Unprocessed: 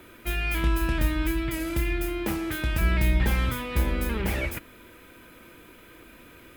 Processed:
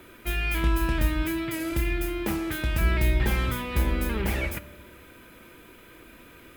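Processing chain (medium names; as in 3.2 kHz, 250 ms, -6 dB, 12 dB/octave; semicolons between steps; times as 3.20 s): 1.25–1.72 s: high-pass 130 Hz 12 dB/octave; reverberation RT60 1.4 s, pre-delay 3 ms, DRR 14.5 dB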